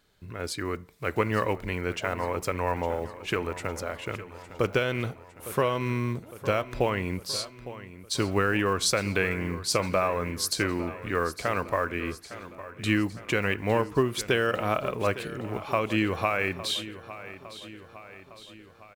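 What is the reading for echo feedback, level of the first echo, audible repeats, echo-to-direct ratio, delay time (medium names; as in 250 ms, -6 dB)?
56%, -15.0 dB, 4, -13.5 dB, 858 ms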